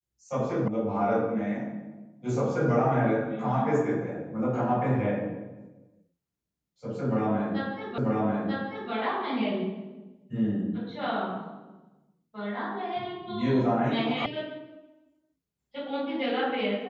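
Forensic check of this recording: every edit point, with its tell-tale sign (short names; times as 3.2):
0.68 sound cut off
7.98 repeat of the last 0.94 s
14.26 sound cut off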